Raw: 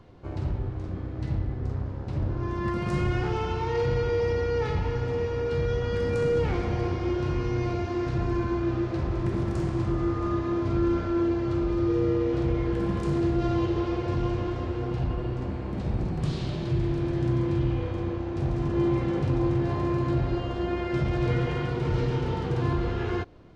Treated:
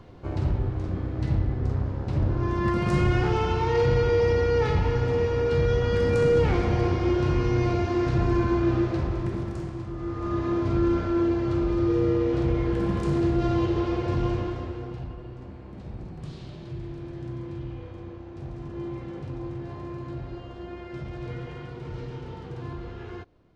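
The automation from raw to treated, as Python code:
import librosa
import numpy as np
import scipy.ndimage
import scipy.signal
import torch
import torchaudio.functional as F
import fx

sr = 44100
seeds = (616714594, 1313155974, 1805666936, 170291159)

y = fx.gain(x, sr, db=fx.line((8.8, 4.0), (9.9, -8.5), (10.44, 1.5), (14.33, 1.5), (15.18, -10.0)))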